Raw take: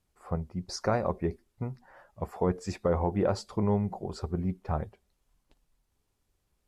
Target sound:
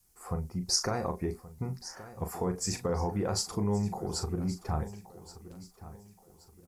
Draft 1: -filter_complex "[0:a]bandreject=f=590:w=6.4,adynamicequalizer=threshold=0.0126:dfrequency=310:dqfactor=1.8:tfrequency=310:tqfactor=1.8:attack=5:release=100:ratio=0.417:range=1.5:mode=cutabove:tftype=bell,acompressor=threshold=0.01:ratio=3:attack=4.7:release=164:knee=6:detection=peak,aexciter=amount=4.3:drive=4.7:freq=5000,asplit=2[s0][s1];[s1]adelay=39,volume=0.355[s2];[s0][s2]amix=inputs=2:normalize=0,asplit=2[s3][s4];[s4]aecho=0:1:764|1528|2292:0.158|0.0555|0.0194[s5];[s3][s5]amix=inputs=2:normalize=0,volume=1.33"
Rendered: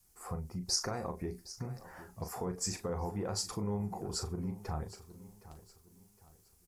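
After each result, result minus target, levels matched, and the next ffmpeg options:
echo 361 ms early; compression: peak gain reduction +6 dB
-filter_complex "[0:a]bandreject=f=590:w=6.4,adynamicequalizer=threshold=0.0126:dfrequency=310:dqfactor=1.8:tfrequency=310:tqfactor=1.8:attack=5:release=100:ratio=0.417:range=1.5:mode=cutabove:tftype=bell,acompressor=threshold=0.01:ratio=3:attack=4.7:release=164:knee=6:detection=peak,aexciter=amount=4.3:drive=4.7:freq=5000,asplit=2[s0][s1];[s1]adelay=39,volume=0.355[s2];[s0][s2]amix=inputs=2:normalize=0,asplit=2[s3][s4];[s4]aecho=0:1:1125|2250|3375:0.158|0.0555|0.0194[s5];[s3][s5]amix=inputs=2:normalize=0,volume=1.33"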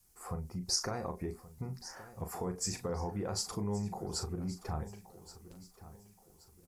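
compression: peak gain reduction +6 dB
-filter_complex "[0:a]bandreject=f=590:w=6.4,adynamicequalizer=threshold=0.0126:dfrequency=310:dqfactor=1.8:tfrequency=310:tqfactor=1.8:attack=5:release=100:ratio=0.417:range=1.5:mode=cutabove:tftype=bell,acompressor=threshold=0.0282:ratio=3:attack=4.7:release=164:knee=6:detection=peak,aexciter=amount=4.3:drive=4.7:freq=5000,asplit=2[s0][s1];[s1]adelay=39,volume=0.355[s2];[s0][s2]amix=inputs=2:normalize=0,asplit=2[s3][s4];[s4]aecho=0:1:1125|2250|3375:0.158|0.0555|0.0194[s5];[s3][s5]amix=inputs=2:normalize=0,volume=1.33"

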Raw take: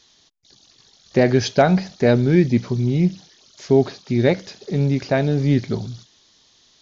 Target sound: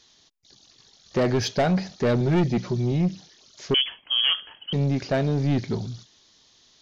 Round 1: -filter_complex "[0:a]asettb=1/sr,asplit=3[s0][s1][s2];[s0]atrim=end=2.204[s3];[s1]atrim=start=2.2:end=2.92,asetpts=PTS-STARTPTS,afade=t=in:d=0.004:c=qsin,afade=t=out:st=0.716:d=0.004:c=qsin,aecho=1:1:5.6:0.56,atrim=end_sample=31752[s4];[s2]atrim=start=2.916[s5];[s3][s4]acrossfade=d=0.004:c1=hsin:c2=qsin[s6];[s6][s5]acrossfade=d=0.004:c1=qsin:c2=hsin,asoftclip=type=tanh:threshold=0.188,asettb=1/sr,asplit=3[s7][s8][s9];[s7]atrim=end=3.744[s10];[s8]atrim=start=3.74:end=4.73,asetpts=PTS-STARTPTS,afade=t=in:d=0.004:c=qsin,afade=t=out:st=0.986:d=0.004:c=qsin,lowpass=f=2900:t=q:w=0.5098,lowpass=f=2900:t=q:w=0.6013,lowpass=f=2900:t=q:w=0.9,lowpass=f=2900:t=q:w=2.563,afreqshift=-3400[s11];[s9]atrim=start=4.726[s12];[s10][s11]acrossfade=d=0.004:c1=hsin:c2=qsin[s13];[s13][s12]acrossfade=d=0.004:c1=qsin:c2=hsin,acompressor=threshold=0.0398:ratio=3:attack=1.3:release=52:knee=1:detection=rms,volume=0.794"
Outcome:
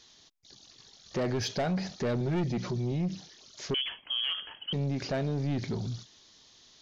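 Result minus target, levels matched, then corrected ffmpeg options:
compression: peak gain reduction +11 dB
-filter_complex "[0:a]asettb=1/sr,asplit=3[s0][s1][s2];[s0]atrim=end=2.204[s3];[s1]atrim=start=2.2:end=2.92,asetpts=PTS-STARTPTS,afade=t=in:d=0.004:c=qsin,afade=t=out:st=0.716:d=0.004:c=qsin,aecho=1:1:5.6:0.56,atrim=end_sample=31752[s4];[s2]atrim=start=2.916[s5];[s3][s4]acrossfade=d=0.004:c1=hsin:c2=qsin[s6];[s6][s5]acrossfade=d=0.004:c1=qsin:c2=hsin,asoftclip=type=tanh:threshold=0.188,asettb=1/sr,asplit=3[s7][s8][s9];[s7]atrim=end=3.744[s10];[s8]atrim=start=3.74:end=4.73,asetpts=PTS-STARTPTS,afade=t=in:d=0.004:c=qsin,afade=t=out:st=0.986:d=0.004:c=qsin,lowpass=f=2900:t=q:w=0.5098,lowpass=f=2900:t=q:w=0.6013,lowpass=f=2900:t=q:w=0.9,lowpass=f=2900:t=q:w=2.563,afreqshift=-3400[s11];[s9]atrim=start=4.726[s12];[s10][s11]acrossfade=d=0.004:c1=hsin:c2=qsin[s13];[s13][s12]acrossfade=d=0.004:c1=qsin:c2=hsin,volume=0.794"

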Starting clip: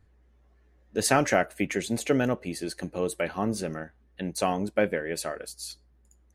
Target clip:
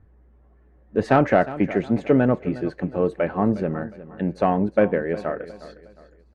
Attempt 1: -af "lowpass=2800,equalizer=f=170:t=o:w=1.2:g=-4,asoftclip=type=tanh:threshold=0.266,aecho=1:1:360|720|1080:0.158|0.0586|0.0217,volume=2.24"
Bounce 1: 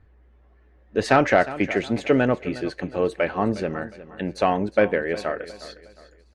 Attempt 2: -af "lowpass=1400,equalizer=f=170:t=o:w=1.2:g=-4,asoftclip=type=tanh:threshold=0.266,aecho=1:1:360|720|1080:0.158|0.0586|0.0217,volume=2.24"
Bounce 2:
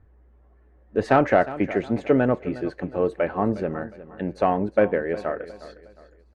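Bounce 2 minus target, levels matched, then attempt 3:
125 Hz band -3.0 dB
-af "lowpass=1400,equalizer=f=170:t=o:w=1.2:g=2,asoftclip=type=tanh:threshold=0.266,aecho=1:1:360|720|1080:0.158|0.0586|0.0217,volume=2.24"

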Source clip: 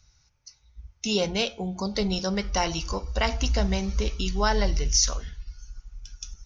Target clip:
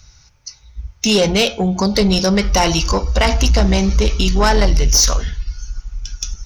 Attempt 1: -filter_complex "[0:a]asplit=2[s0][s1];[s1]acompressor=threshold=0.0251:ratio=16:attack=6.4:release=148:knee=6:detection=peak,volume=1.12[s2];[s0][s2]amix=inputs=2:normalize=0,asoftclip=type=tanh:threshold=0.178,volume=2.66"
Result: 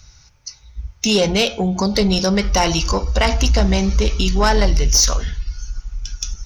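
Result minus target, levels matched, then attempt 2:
compression: peak gain reduction +9.5 dB
-filter_complex "[0:a]asplit=2[s0][s1];[s1]acompressor=threshold=0.0794:ratio=16:attack=6.4:release=148:knee=6:detection=peak,volume=1.12[s2];[s0][s2]amix=inputs=2:normalize=0,asoftclip=type=tanh:threshold=0.178,volume=2.66"

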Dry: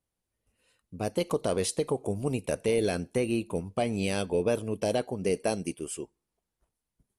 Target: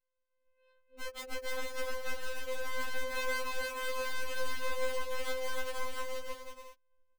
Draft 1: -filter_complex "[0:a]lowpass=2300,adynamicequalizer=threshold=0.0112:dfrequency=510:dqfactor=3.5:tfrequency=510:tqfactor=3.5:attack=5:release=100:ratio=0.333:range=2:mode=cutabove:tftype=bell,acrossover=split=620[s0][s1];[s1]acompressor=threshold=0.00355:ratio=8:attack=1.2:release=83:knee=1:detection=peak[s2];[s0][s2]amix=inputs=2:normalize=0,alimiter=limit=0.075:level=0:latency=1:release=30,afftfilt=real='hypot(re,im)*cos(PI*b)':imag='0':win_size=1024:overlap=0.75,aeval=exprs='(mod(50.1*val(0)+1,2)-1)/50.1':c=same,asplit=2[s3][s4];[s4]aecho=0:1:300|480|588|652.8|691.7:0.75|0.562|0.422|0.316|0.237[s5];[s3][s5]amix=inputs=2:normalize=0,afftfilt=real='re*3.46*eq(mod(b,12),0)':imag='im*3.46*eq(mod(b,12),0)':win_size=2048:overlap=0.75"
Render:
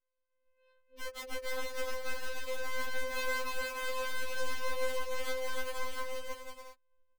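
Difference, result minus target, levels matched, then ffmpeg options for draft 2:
compression: peak gain reduction -9.5 dB
-filter_complex "[0:a]lowpass=2300,adynamicequalizer=threshold=0.0112:dfrequency=510:dqfactor=3.5:tfrequency=510:tqfactor=3.5:attack=5:release=100:ratio=0.333:range=2:mode=cutabove:tftype=bell,acrossover=split=620[s0][s1];[s1]acompressor=threshold=0.001:ratio=8:attack=1.2:release=83:knee=1:detection=peak[s2];[s0][s2]amix=inputs=2:normalize=0,alimiter=limit=0.075:level=0:latency=1:release=30,afftfilt=real='hypot(re,im)*cos(PI*b)':imag='0':win_size=1024:overlap=0.75,aeval=exprs='(mod(50.1*val(0)+1,2)-1)/50.1':c=same,asplit=2[s3][s4];[s4]aecho=0:1:300|480|588|652.8|691.7:0.75|0.562|0.422|0.316|0.237[s5];[s3][s5]amix=inputs=2:normalize=0,afftfilt=real='re*3.46*eq(mod(b,12),0)':imag='im*3.46*eq(mod(b,12),0)':win_size=2048:overlap=0.75"

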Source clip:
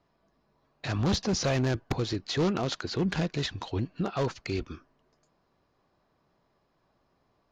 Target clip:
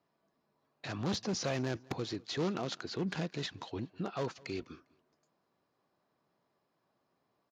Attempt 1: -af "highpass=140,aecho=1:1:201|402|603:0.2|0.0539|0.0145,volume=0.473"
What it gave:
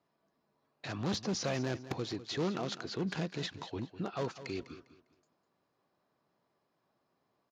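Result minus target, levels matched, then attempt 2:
echo-to-direct +10.5 dB
-af "highpass=140,aecho=1:1:201|402:0.0596|0.0161,volume=0.473"

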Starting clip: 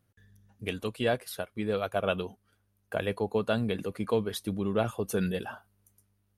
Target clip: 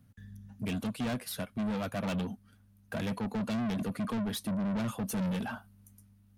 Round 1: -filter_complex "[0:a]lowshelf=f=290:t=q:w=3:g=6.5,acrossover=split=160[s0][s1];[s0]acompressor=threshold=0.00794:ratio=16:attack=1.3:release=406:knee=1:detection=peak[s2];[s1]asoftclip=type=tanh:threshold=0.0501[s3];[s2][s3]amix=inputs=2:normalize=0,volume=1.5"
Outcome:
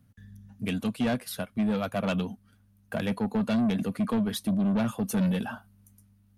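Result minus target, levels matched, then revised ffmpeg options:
saturation: distortion -6 dB
-filter_complex "[0:a]lowshelf=f=290:t=q:w=3:g=6.5,acrossover=split=160[s0][s1];[s0]acompressor=threshold=0.00794:ratio=16:attack=1.3:release=406:knee=1:detection=peak[s2];[s1]asoftclip=type=tanh:threshold=0.0168[s3];[s2][s3]amix=inputs=2:normalize=0,volume=1.5"

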